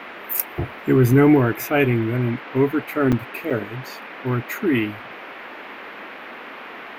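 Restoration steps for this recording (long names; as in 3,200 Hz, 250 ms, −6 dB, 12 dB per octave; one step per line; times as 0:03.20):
repair the gap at 0:03.12/0:03.50, 6.5 ms
noise reduction from a noise print 27 dB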